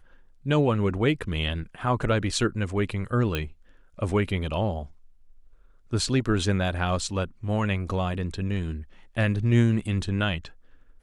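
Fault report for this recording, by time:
3.35 pop -13 dBFS

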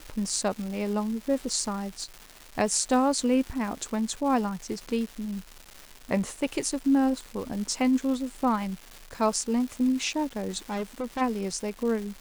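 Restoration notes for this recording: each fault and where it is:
crackle 520/s -35 dBFS
10.7–11.22 clipped -27 dBFS

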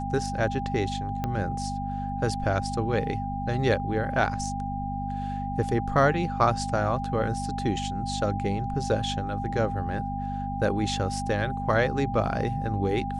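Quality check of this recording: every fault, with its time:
hum 50 Hz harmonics 5 -33 dBFS
tone 800 Hz -32 dBFS
1.24 pop -16 dBFS

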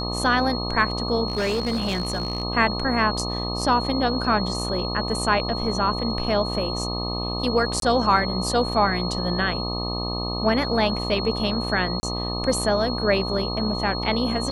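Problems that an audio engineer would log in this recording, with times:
buzz 60 Hz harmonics 21 -29 dBFS
tone 4300 Hz -30 dBFS
1.28–2.43 clipped -20 dBFS
7.8–7.82 gap 22 ms
12–12.03 gap 30 ms

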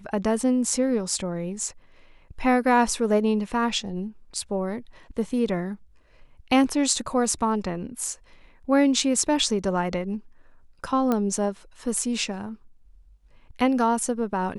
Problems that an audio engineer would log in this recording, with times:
11.12 pop -12 dBFS

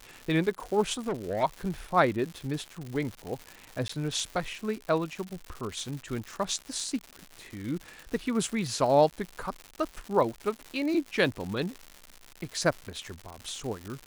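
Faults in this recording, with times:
crackle 210/s -34 dBFS
0.98–1.44 clipped -25.5 dBFS
3.88–3.89 gap 14 ms

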